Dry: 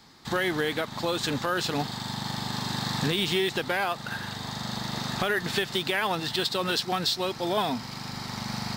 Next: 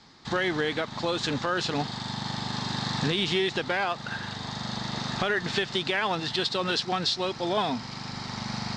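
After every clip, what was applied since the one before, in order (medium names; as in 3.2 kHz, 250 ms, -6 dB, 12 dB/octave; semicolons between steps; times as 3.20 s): low-pass 6.8 kHz 24 dB/octave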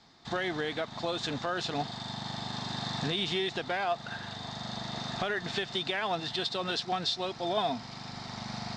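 small resonant body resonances 690/3600 Hz, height 10 dB, ringing for 45 ms; trim -6 dB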